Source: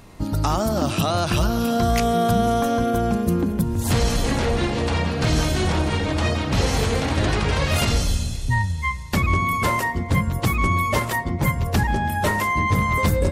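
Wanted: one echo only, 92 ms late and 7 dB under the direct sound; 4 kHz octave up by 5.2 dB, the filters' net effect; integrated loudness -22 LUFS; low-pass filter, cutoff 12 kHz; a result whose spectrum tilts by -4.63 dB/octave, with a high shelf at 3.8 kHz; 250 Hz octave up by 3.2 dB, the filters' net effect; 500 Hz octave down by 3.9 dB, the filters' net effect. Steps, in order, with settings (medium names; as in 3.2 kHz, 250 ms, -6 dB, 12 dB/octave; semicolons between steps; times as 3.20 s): low-pass 12 kHz; peaking EQ 250 Hz +5.5 dB; peaking EQ 500 Hz -7 dB; treble shelf 3.8 kHz +3.5 dB; peaking EQ 4 kHz +4.5 dB; delay 92 ms -7 dB; trim -2 dB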